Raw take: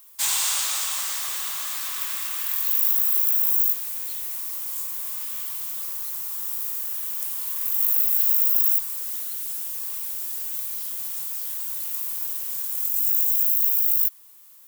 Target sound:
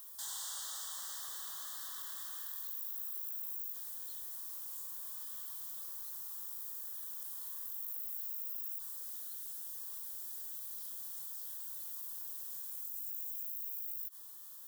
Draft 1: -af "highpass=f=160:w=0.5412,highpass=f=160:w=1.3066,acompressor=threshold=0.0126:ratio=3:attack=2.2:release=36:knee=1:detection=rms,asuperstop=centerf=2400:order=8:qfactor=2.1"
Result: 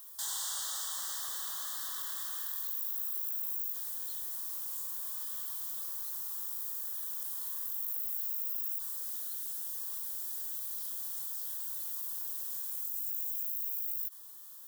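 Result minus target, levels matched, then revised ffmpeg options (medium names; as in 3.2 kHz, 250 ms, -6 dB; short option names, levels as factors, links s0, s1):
125 Hz band -6.0 dB; compression: peak gain reduction -5.5 dB
-af "acompressor=threshold=0.00473:ratio=3:attack=2.2:release=36:knee=1:detection=rms,asuperstop=centerf=2400:order=8:qfactor=2.1"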